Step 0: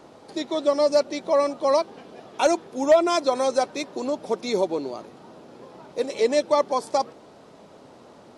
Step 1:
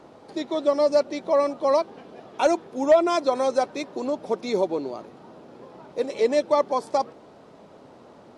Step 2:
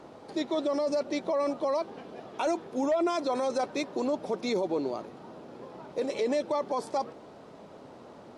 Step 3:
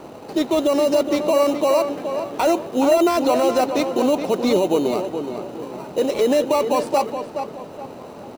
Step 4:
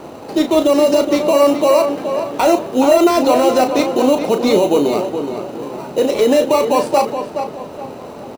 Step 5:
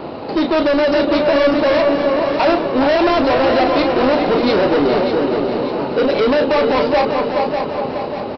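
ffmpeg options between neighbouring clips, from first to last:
ffmpeg -i in.wav -af "highshelf=frequency=3700:gain=-7.5" out.wav
ffmpeg -i in.wav -af "alimiter=limit=-21dB:level=0:latency=1:release=13" out.wav
ffmpeg -i in.wav -filter_complex "[0:a]asplit=2[link_01][link_02];[link_02]acrusher=samples=13:mix=1:aa=0.000001,volume=-4dB[link_03];[link_01][link_03]amix=inputs=2:normalize=0,asplit=2[link_04][link_05];[link_05]adelay=421,lowpass=frequency=3000:poles=1,volume=-7.5dB,asplit=2[link_06][link_07];[link_07]adelay=421,lowpass=frequency=3000:poles=1,volume=0.37,asplit=2[link_08][link_09];[link_09]adelay=421,lowpass=frequency=3000:poles=1,volume=0.37,asplit=2[link_10][link_11];[link_11]adelay=421,lowpass=frequency=3000:poles=1,volume=0.37[link_12];[link_04][link_06][link_08][link_10][link_12]amix=inputs=5:normalize=0,volume=6.5dB" out.wav
ffmpeg -i in.wav -filter_complex "[0:a]asplit=2[link_01][link_02];[link_02]adelay=35,volume=-8dB[link_03];[link_01][link_03]amix=inputs=2:normalize=0,volume=4.5dB" out.wav
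ffmpeg -i in.wav -af "aresample=11025,asoftclip=type=tanh:threshold=-17.5dB,aresample=44100,aecho=1:1:594|1188|1782|2376|2970:0.422|0.19|0.0854|0.0384|0.0173,volume=5.5dB" out.wav

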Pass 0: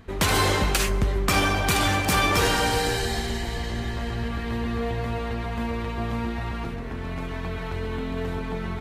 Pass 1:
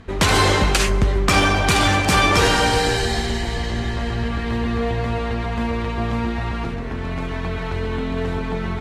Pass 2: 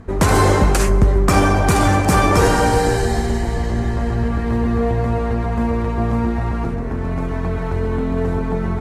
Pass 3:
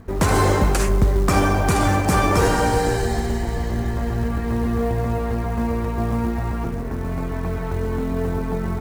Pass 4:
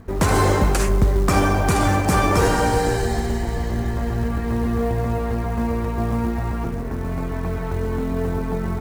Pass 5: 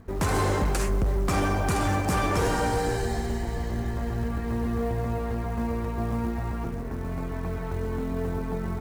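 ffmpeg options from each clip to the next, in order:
ffmpeg -i in.wav -af "lowpass=8700,volume=5.5dB" out.wav
ffmpeg -i in.wav -af "equalizer=frequency=3300:width_type=o:width=1.7:gain=-14.5,volume=4.5dB" out.wav
ffmpeg -i in.wav -af "acrusher=bits=7:mode=log:mix=0:aa=0.000001,volume=-3.5dB" out.wav
ffmpeg -i in.wav -af anull out.wav
ffmpeg -i in.wav -af "volume=13.5dB,asoftclip=hard,volume=-13.5dB,volume=-6dB" out.wav

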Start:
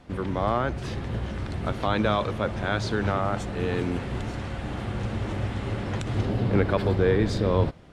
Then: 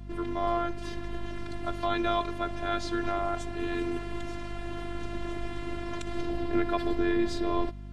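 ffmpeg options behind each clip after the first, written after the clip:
ffmpeg -i in.wav -af "afftfilt=real='hypot(re,im)*cos(PI*b)':imag='0':win_size=512:overlap=0.75,aeval=exprs='val(0)+0.01*(sin(2*PI*50*n/s)+sin(2*PI*2*50*n/s)/2+sin(2*PI*3*50*n/s)/3+sin(2*PI*4*50*n/s)/4+sin(2*PI*5*50*n/s)/5)':channel_layout=same" out.wav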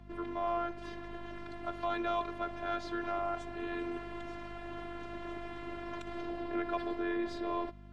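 ffmpeg -i in.wav -filter_complex "[0:a]acrossover=split=290|1200[link_01][link_02][link_03];[link_01]alimiter=level_in=6dB:limit=-24dB:level=0:latency=1,volume=-6dB[link_04];[link_04][link_02][link_03]amix=inputs=3:normalize=0,asplit=2[link_05][link_06];[link_06]highpass=frequency=720:poles=1,volume=10dB,asoftclip=type=tanh:threshold=-16.5dB[link_07];[link_05][link_07]amix=inputs=2:normalize=0,lowpass=frequency=1400:poles=1,volume=-6dB,volume=-5.5dB" out.wav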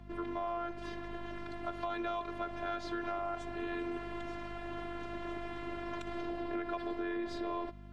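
ffmpeg -i in.wav -af "acompressor=threshold=-35dB:ratio=6,volume=1.5dB" out.wav

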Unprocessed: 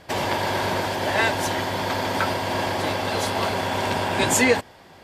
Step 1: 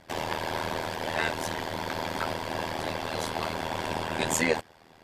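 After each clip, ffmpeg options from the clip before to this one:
ffmpeg -i in.wav -af "tremolo=f=80:d=0.947,volume=-3.5dB" out.wav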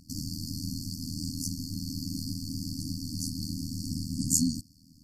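ffmpeg -i in.wav -af "afftfilt=real='re*(1-between(b*sr/4096,310,4300))':imag='im*(1-between(b*sr/4096,310,4300))':win_size=4096:overlap=0.75,volume=4.5dB" out.wav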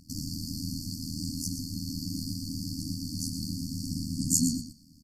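ffmpeg -i in.wav -af "aecho=1:1:117|234:0.355|0.0532" out.wav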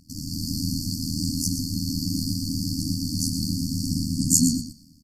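ffmpeg -i in.wav -af "dynaudnorm=framelen=130:gausssize=5:maxgain=8dB" out.wav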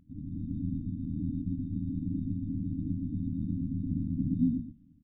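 ffmpeg -i in.wav -af "aresample=8000,aresample=44100,volume=-5.5dB" out.wav

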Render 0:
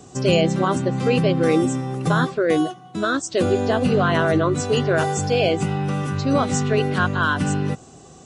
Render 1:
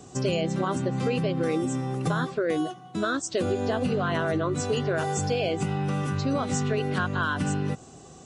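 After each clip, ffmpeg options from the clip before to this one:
ffmpeg -i in.wav -af "acompressor=threshold=-20dB:ratio=6,volume=-2.5dB" out.wav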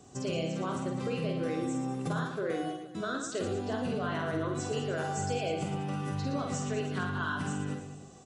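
ffmpeg -i in.wav -af "aecho=1:1:50|115|199.5|309.4|452.2:0.631|0.398|0.251|0.158|0.1,volume=-8.5dB" out.wav

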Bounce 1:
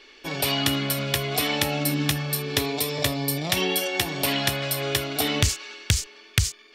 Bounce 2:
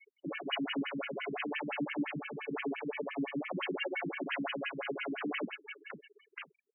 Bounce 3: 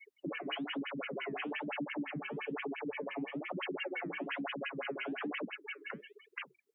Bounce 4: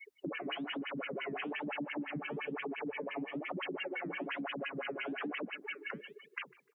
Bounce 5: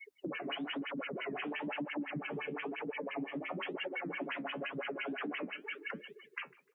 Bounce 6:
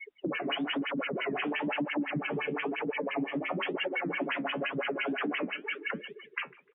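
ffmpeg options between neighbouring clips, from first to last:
ffmpeg -i in.wav -af "aeval=exprs='0.0794*(abs(mod(val(0)/0.0794+3,4)-2)-1)':channel_layout=same,afftfilt=real='re*gte(hypot(re,im),0.0126)':imag='im*gte(hypot(re,im),0.0126)':win_size=1024:overlap=0.75,afftfilt=real='re*between(b*sr/1024,220*pow(2300/220,0.5+0.5*sin(2*PI*5.8*pts/sr))/1.41,220*pow(2300/220,0.5+0.5*sin(2*PI*5.8*pts/sr))*1.41)':imag='im*between(b*sr/1024,220*pow(2300/220,0.5+0.5*sin(2*PI*5.8*pts/sr))/1.41,220*pow(2300/220,0.5+0.5*sin(2*PI*5.8*pts/sr))*1.41)':win_size=1024:overlap=0.75" out.wav
ffmpeg -i in.wav -af "acompressor=threshold=-43dB:ratio=3,flanger=delay=0.8:depth=8.4:regen=-74:speed=1.1:shape=triangular,volume=9dB" out.wav
ffmpeg -i in.wav -filter_complex "[0:a]acompressor=threshold=-42dB:ratio=2.5,asplit=2[link_01][link_02];[link_02]adelay=150,lowpass=frequency=1200:poles=1,volume=-18dB,asplit=2[link_03][link_04];[link_04]adelay=150,lowpass=frequency=1200:poles=1,volume=0.38,asplit=2[link_05][link_06];[link_06]adelay=150,lowpass=frequency=1200:poles=1,volume=0.38[link_07];[link_01][link_03][link_05][link_07]amix=inputs=4:normalize=0,volume=4dB" out.wav
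ffmpeg -i in.wav -af "flanger=delay=3.6:depth=9.3:regen=-55:speed=1:shape=sinusoidal,volume=4dB" out.wav
ffmpeg -i in.wav -af "aresample=8000,aresample=44100,volume=7dB" out.wav

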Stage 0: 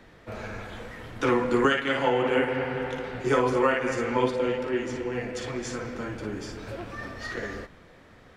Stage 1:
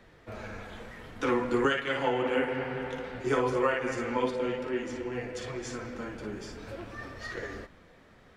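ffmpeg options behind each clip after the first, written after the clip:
ffmpeg -i in.wav -af "flanger=delay=1.6:depth=3.7:regen=-66:speed=0.55:shape=triangular" out.wav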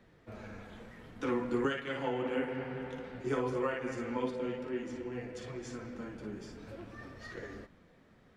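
ffmpeg -i in.wav -af "equalizer=frequency=190:width_type=o:width=2:gain=6.5,volume=-8.5dB" out.wav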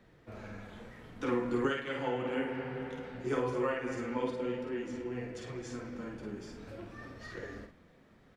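ffmpeg -i in.wav -filter_complex "[0:a]asplit=2[link_01][link_02];[link_02]adelay=49,volume=-7dB[link_03];[link_01][link_03]amix=inputs=2:normalize=0" out.wav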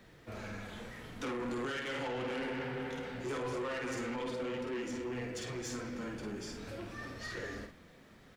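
ffmpeg -i in.wav -af "highshelf=frequency=2400:gain=8.5,alimiter=level_in=2.5dB:limit=-24dB:level=0:latency=1:release=43,volume=-2.5dB,asoftclip=type=tanh:threshold=-36dB,volume=2.5dB" out.wav

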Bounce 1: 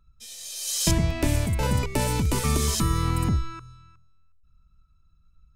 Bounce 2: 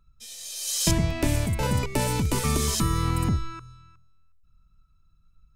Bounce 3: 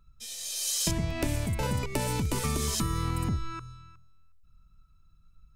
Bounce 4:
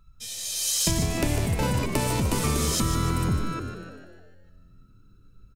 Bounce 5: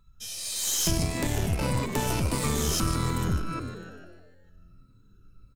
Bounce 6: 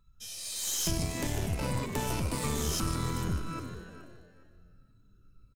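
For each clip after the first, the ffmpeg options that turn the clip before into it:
ffmpeg -i in.wav -af "equalizer=frequency=63:width_type=o:width=0.37:gain=-6" out.wav
ffmpeg -i in.wav -af "acompressor=threshold=-29dB:ratio=3,volume=1.5dB" out.wav
ffmpeg -i in.wav -filter_complex "[0:a]asplit=7[link_01][link_02][link_03][link_04][link_05][link_06][link_07];[link_02]adelay=150,afreqshift=88,volume=-9dB[link_08];[link_03]adelay=300,afreqshift=176,volume=-14.8dB[link_09];[link_04]adelay=450,afreqshift=264,volume=-20.7dB[link_10];[link_05]adelay=600,afreqshift=352,volume=-26.5dB[link_11];[link_06]adelay=750,afreqshift=440,volume=-32.4dB[link_12];[link_07]adelay=900,afreqshift=528,volume=-38.2dB[link_13];[link_01][link_08][link_09][link_10][link_11][link_12][link_13]amix=inputs=7:normalize=0,volume=4dB" out.wav
ffmpeg -i in.wav -af "afftfilt=real='re*pow(10,6/40*sin(2*PI*(1*log(max(b,1)*sr/1024/100)/log(2)-(-1.6)*(pts-256)/sr)))':imag='im*pow(10,6/40*sin(2*PI*(1*log(max(b,1)*sr/1024/100)/log(2)-(-1.6)*(pts-256)/sr)))':win_size=1024:overlap=0.75,aeval=exprs='(tanh(7.94*val(0)+0.5)-tanh(0.5))/7.94':channel_layout=same" out.wav
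ffmpeg -i in.wav -af "aecho=1:1:419|838:0.188|0.0433,volume=-5dB" out.wav

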